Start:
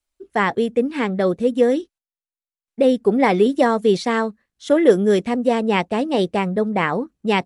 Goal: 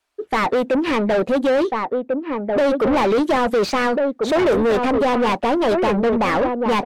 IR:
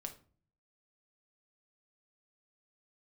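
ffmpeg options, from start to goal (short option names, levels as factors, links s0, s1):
-filter_complex "[0:a]asplit=2[s0][s1];[s1]adelay=1516,volume=0.316,highshelf=f=4000:g=-34.1[s2];[s0][s2]amix=inputs=2:normalize=0,asplit=2[s3][s4];[s4]highpass=f=720:p=1,volume=39.8,asoftclip=type=tanh:threshold=0.794[s5];[s3][s5]amix=inputs=2:normalize=0,lowpass=f=1400:p=1,volume=0.501,asetrate=48000,aresample=44100,volume=0.422"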